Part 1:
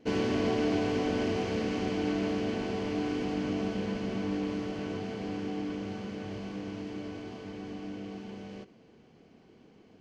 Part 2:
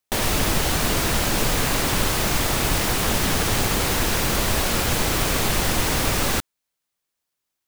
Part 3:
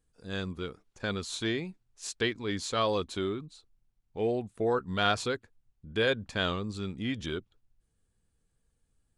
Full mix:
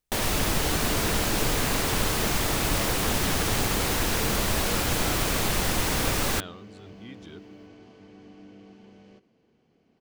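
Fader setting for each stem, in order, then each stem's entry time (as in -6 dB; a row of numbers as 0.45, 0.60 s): -8.5, -4.0, -12.0 dB; 0.55, 0.00, 0.00 s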